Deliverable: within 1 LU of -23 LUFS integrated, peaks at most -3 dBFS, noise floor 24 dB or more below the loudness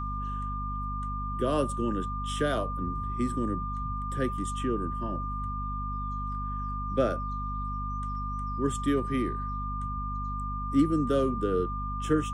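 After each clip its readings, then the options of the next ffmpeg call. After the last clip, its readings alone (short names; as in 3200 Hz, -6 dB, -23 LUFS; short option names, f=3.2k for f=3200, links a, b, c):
hum 50 Hz; harmonics up to 250 Hz; hum level -32 dBFS; steady tone 1200 Hz; tone level -34 dBFS; loudness -31.0 LUFS; peak -12.0 dBFS; loudness target -23.0 LUFS
-> -af "bandreject=f=50:t=h:w=6,bandreject=f=100:t=h:w=6,bandreject=f=150:t=h:w=6,bandreject=f=200:t=h:w=6,bandreject=f=250:t=h:w=6"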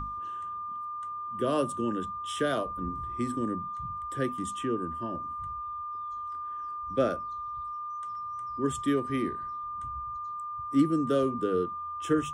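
hum none; steady tone 1200 Hz; tone level -34 dBFS
-> -af "bandreject=f=1.2k:w=30"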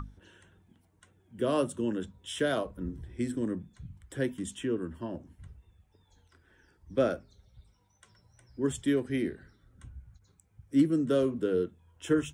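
steady tone none; loudness -31.5 LUFS; peak -13.0 dBFS; loudness target -23.0 LUFS
-> -af "volume=8.5dB"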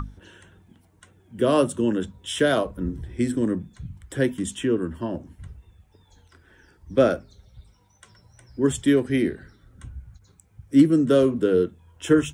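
loudness -23.0 LUFS; peak -4.5 dBFS; noise floor -59 dBFS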